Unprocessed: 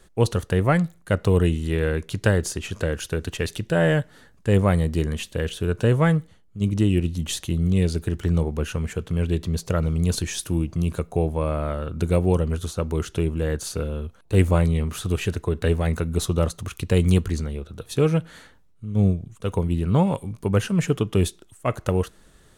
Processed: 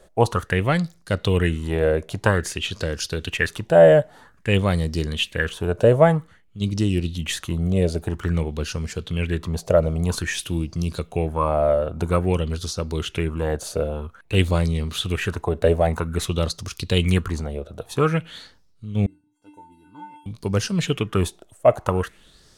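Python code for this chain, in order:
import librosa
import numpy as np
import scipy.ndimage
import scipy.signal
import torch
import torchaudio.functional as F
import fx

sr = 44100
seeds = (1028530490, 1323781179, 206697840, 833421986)

y = fx.comb_fb(x, sr, f0_hz=300.0, decay_s=0.45, harmonics='odd', damping=0.0, mix_pct=100, at=(19.06, 20.26))
y = fx.bell_lfo(y, sr, hz=0.51, low_hz=590.0, high_hz=5200.0, db=16)
y = y * 10.0 ** (-1.5 / 20.0)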